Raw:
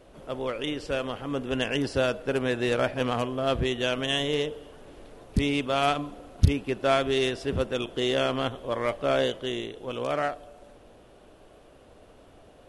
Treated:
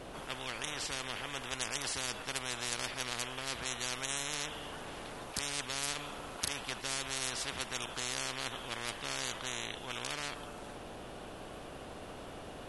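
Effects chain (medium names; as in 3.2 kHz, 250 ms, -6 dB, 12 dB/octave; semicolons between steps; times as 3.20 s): spectrum-flattening compressor 10:1; trim -8.5 dB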